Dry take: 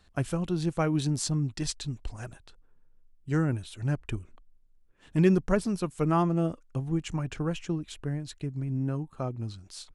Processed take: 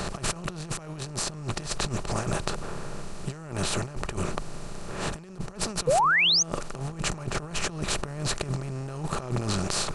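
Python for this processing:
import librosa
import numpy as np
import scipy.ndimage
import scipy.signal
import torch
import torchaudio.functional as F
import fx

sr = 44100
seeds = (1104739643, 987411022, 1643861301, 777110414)

y = fx.bin_compress(x, sr, power=0.4)
y = fx.peak_eq(y, sr, hz=280.0, db=-6.0, octaves=1.0)
y = fx.over_compress(y, sr, threshold_db=-30.0, ratio=-0.5)
y = fx.spec_paint(y, sr, seeds[0], shape='rise', start_s=5.87, length_s=0.56, low_hz=460.0, high_hz=6700.0, level_db=-21.0)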